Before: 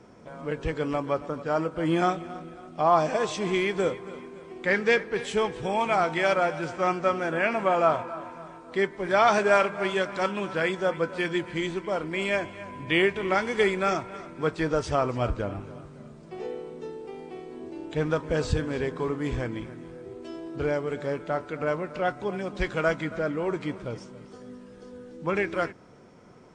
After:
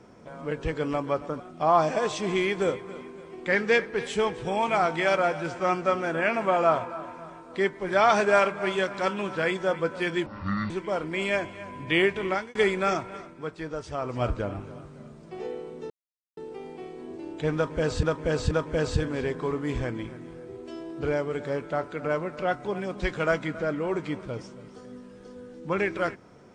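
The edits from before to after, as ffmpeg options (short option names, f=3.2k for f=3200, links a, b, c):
-filter_complex "[0:a]asplit=10[a][b][c][d][e][f][g][h][i][j];[a]atrim=end=1.402[k];[b]atrim=start=2.578:end=11.444[l];[c]atrim=start=11.44:end=11.7,asetpts=PTS-STARTPTS,asetrate=26019,aresample=44100[m];[d]atrim=start=11.696:end=13.55,asetpts=PTS-STARTPTS,afade=t=out:st=1.554:d=0.3[n];[e]atrim=start=13.55:end=14.52,asetpts=PTS-STARTPTS,afade=t=in:d=0.004:c=hsin,afade=t=out:st=0.62:d=0.35:c=qua:silence=0.375837[o];[f]atrim=start=14.52:end=14.87,asetpts=PTS-STARTPTS,volume=-8.5dB[p];[g]atrim=start=14.87:end=16.9,asetpts=PTS-STARTPTS,afade=t=in:d=0.35:c=qua:silence=0.375837,afade=t=out:st=2.026:d=0.004:c=hsin,apad=pad_dur=0.47[q];[h]atrim=start=16.9:end=18.562,asetpts=PTS-STARTPTS,afade=t=in:d=0.004:c=hsin[r];[i]atrim=start=18.078:end=18.562[s];[j]atrim=start=18.078[t];[k][l]acrossfade=d=0.004:c1=hsin:c2=hsin[u];[u][m]acrossfade=d=0.004:c1=hsin:c2=hsin[v];[n][o][p][q][r]concat=n=5:v=0:a=1[w];[v][w]acrossfade=d=0.004:c1=hsin:c2=hsin[x];[x][s]acrossfade=d=0.004:c1=hsin:c2=hsin[y];[y][t]acrossfade=d=0.004:c1=hsin:c2=hsin"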